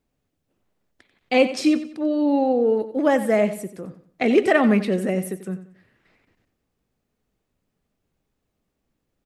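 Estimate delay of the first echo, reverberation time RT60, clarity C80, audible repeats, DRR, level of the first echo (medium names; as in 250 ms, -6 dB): 91 ms, no reverb, no reverb, 3, no reverb, -13.0 dB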